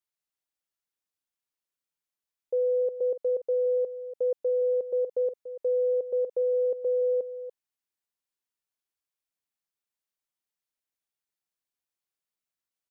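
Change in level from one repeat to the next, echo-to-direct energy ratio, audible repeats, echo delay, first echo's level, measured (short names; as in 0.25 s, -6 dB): no steady repeat, -12.5 dB, 1, 0.288 s, -12.5 dB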